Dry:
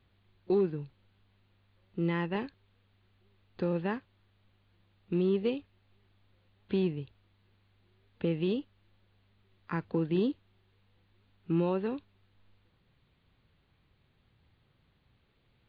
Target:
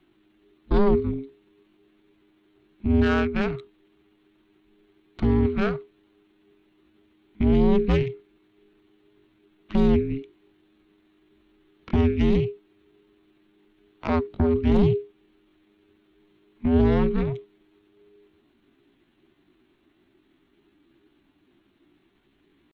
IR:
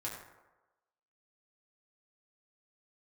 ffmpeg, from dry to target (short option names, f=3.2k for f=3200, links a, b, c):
-af "aeval=exprs='0.112*(cos(1*acos(clip(val(0)/0.112,-1,1)))-cos(1*PI/2))+0.0398*(cos(4*acos(clip(val(0)/0.112,-1,1)))-cos(4*PI/2))':c=same,atempo=0.69,afreqshift=-410,volume=6dB"